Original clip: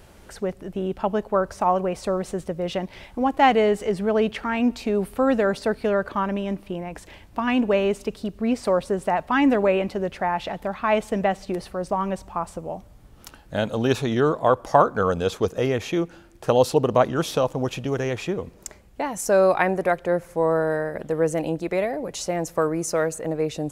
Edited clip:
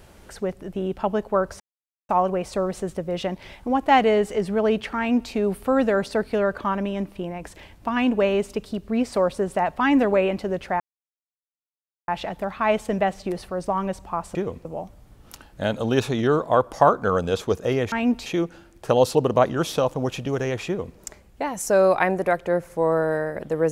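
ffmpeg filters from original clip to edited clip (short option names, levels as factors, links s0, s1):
-filter_complex "[0:a]asplit=7[s0][s1][s2][s3][s4][s5][s6];[s0]atrim=end=1.6,asetpts=PTS-STARTPTS,afade=t=out:st=1.596:d=0.004:c=hsin,apad=pad_dur=0.49[s7];[s1]atrim=start=1.6:end=10.31,asetpts=PTS-STARTPTS,afade=t=in:d=0.004:c=hsin,afade=t=out:st=8.706:d=0.004:c=hsin,apad=pad_dur=1.28[s8];[s2]atrim=start=10.31:end=12.582,asetpts=PTS-STARTPTS,afade=t=in:d=0.004:c=hsin[s9];[s3]atrim=start=18.258:end=18.562[s10];[s4]atrim=start=12.578:end=15.852[s11];[s5]atrim=start=4.488:end=4.832[s12];[s6]atrim=start=15.848[s13];[s7][s8][s9]concat=n=3:v=0:a=1[s14];[s14][s10]acrossfade=d=0.004:c1=hsin:c2=hsin[s15];[s15][s11]acrossfade=d=0.004:c1=hsin:c2=hsin[s16];[s16][s12]acrossfade=d=0.004:c1=hsin:c2=hsin[s17];[s17][s13]acrossfade=d=0.004:c1=hsin:c2=hsin"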